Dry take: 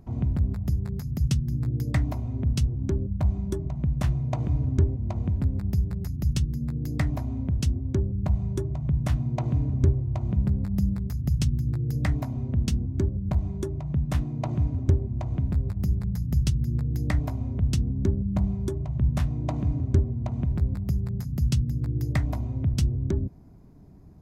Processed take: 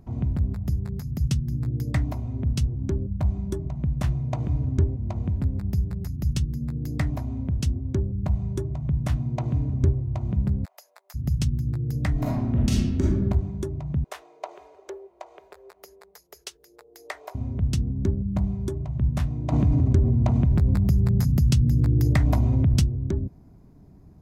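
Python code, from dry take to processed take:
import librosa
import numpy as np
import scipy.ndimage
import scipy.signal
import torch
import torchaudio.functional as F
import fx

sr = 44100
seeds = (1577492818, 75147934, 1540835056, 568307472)

y = fx.steep_highpass(x, sr, hz=570.0, slope=48, at=(10.64, 11.14), fade=0.02)
y = fx.reverb_throw(y, sr, start_s=12.12, length_s=1.08, rt60_s=1.0, drr_db=-5.5)
y = fx.ellip_highpass(y, sr, hz=400.0, order=4, stop_db=40, at=(14.04, 17.35))
y = fx.env_flatten(y, sr, amount_pct=70, at=(19.52, 22.84))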